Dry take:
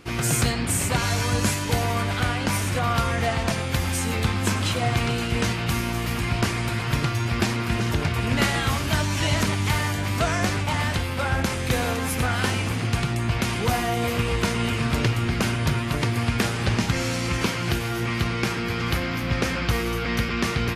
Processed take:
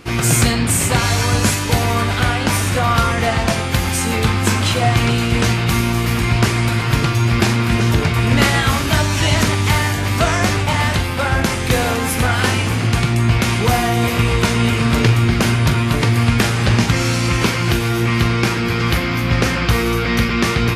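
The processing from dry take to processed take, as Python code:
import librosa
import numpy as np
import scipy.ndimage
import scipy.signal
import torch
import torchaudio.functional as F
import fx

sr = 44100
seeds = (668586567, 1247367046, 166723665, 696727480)

p1 = fx.doubler(x, sr, ms=18.0, db=-12)
p2 = p1 + fx.room_flutter(p1, sr, wall_m=7.4, rt60_s=0.22, dry=0)
y = p2 * 10.0 ** (7.0 / 20.0)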